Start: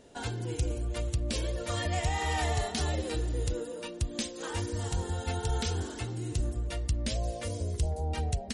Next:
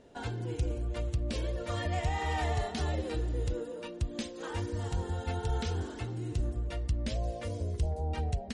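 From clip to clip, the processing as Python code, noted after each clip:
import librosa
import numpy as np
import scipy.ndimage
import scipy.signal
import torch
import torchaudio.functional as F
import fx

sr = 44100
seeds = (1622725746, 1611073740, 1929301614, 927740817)

y = fx.lowpass(x, sr, hz=2600.0, slope=6)
y = F.gain(torch.from_numpy(y), -1.0).numpy()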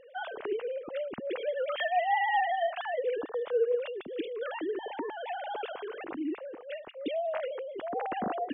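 y = fx.sine_speech(x, sr)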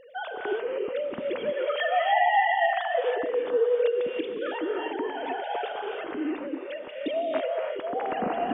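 y = fx.rev_gated(x, sr, seeds[0], gate_ms=340, shape='rising', drr_db=1.0)
y = F.gain(torch.from_numpy(y), 3.0).numpy()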